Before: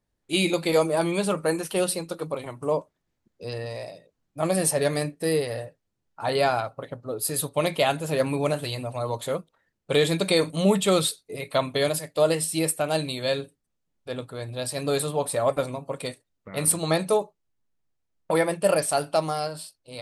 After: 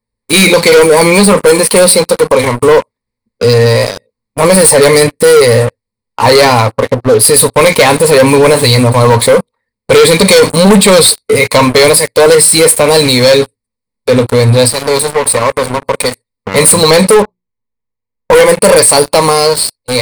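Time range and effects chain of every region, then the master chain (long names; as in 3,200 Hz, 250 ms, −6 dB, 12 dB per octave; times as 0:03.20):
0:14.68–0:16.55: downward compressor 2 to 1, threshold −38 dBFS + saturating transformer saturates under 1,100 Hz
0:17.22–0:18.33: high-frequency loss of the air 280 metres + mains-hum notches 60/120/180/240/300/360 Hz
whole clip: EQ curve with evenly spaced ripples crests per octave 0.93, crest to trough 14 dB; leveller curve on the samples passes 5; brickwall limiter −9 dBFS; level +8 dB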